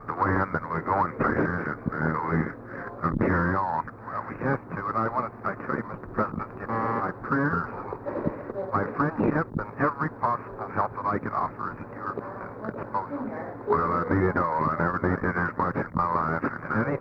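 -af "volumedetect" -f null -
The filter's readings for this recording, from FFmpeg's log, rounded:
mean_volume: -27.8 dB
max_volume: -9.9 dB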